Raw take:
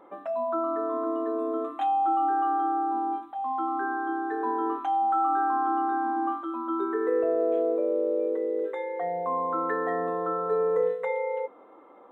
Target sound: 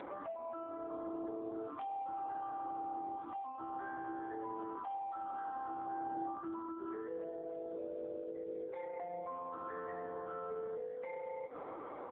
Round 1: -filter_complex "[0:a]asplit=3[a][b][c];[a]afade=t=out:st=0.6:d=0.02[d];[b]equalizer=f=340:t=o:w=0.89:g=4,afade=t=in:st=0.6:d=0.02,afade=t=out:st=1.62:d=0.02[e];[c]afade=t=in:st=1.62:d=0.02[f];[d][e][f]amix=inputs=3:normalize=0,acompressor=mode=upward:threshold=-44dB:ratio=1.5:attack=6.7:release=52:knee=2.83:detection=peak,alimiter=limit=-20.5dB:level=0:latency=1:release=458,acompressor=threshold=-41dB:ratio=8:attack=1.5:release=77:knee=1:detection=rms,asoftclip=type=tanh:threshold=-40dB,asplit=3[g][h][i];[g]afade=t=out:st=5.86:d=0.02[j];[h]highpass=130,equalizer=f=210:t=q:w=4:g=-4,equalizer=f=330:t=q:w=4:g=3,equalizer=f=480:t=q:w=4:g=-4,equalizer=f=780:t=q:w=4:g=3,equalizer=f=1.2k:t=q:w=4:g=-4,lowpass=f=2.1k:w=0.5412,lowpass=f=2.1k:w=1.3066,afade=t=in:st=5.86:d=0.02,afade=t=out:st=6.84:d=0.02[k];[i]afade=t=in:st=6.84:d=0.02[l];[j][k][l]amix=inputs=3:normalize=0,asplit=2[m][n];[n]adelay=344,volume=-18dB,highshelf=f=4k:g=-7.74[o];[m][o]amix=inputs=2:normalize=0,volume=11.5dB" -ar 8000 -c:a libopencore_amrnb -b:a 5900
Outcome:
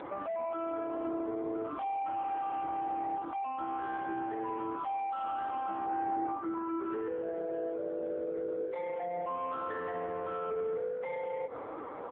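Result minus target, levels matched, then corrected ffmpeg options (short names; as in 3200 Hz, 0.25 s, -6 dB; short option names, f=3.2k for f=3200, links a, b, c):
compressor: peak gain reduction -8.5 dB
-filter_complex "[0:a]asplit=3[a][b][c];[a]afade=t=out:st=0.6:d=0.02[d];[b]equalizer=f=340:t=o:w=0.89:g=4,afade=t=in:st=0.6:d=0.02,afade=t=out:st=1.62:d=0.02[e];[c]afade=t=in:st=1.62:d=0.02[f];[d][e][f]amix=inputs=3:normalize=0,acompressor=mode=upward:threshold=-44dB:ratio=1.5:attack=6.7:release=52:knee=2.83:detection=peak,alimiter=limit=-20.5dB:level=0:latency=1:release=458,acompressor=threshold=-50.5dB:ratio=8:attack=1.5:release=77:knee=1:detection=rms,asoftclip=type=tanh:threshold=-40dB,asplit=3[g][h][i];[g]afade=t=out:st=5.86:d=0.02[j];[h]highpass=130,equalizer=f=210:t=q:w=4:g=-4,equalizer=f=330:t=q:w=4:g=3,equalizer=f=480:t=q:w=4:g=-4,equalizer=f=780:t=q:w=4:g=3,equalizer=f=1.2k:t=q:w=4:g=-4,lowpass=f=2.1k:w=0.5412,lowpass=f=2.1k:w=1.3066,afade=t=in:st=5.86:d=0.02,afade=t=out:st=6.84:d=0.02[k];[i]afade=t=in:st=6.84:d=0.02[l];[j][k][l]amix=inputs=3:normalize=0,asplit=2[m][n];[n]adelay=344,volume=-18dB,highshelf=f=4k:g=-7.74[o];[m][o]amix=inputs=2:normalize=0,volume=11.5dB" -ar 8000 -c:a libopencore_amrnb -b:a 5900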